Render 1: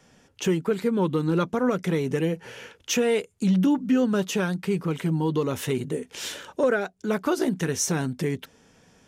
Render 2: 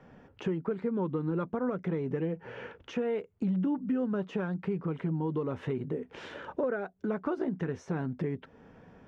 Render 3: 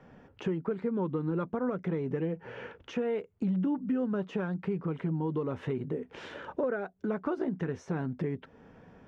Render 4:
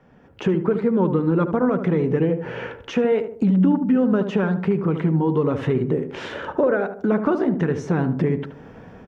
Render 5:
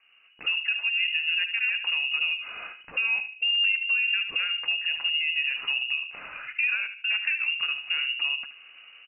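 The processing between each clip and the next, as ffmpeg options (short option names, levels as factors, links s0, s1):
-af "acompressor=threshold=0.0126:ratio=2.5,lowpass=1500,volume=1.58"
-af anull
-filter_complex "[0:a]dynaudnorm=f=220:g=3:m=3.76,asplit=2[s0][s1];[s1]adelay=75,lowpass=f=1100:p=1,volume=0.422,asplit=2[s2][s3];[s3]adelay=75,lowpass=f=1100:p=1,volume=0.45,asplit=2[s4][s5];[s5]adelay=75,lowpass=f=1100:p=1,volume=0.45,asplit=2[s6][s7];[s7]adelay=75,lowpass=f=1100:p=1,volume=0.45,asplit=2[s8][s9];[s9]adelay=75,lowpass=f=1100:p=1,volume=0.45[s10];[s0][s2][s4][s6][s8][s10]amix=inputs=6:normalize=0"
-af "lowpass=f=2600:t=q:w=0.5098,lowpass=f=2600:t=q:w=0.6013,lowpass=f=2600:t=q:w=0.9,lowpass=f=2600:t=q:w=2.563,afreqshift=-3000,volume=0.422"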